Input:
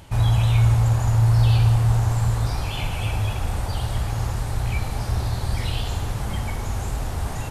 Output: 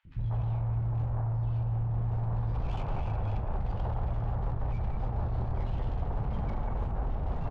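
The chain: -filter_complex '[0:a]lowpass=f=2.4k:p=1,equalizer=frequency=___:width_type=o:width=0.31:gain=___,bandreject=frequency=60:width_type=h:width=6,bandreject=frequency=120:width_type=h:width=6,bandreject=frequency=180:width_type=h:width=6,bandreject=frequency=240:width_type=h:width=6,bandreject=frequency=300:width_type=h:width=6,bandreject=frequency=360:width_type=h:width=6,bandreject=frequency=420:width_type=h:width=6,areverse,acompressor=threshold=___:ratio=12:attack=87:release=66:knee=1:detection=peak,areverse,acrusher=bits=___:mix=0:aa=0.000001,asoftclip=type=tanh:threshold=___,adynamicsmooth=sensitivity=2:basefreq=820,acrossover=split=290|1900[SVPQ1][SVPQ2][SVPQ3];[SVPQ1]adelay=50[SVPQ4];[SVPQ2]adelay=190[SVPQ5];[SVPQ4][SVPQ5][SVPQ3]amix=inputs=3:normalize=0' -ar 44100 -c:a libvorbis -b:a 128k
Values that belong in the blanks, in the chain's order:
92, -10.5, -31dB, 10, -21dB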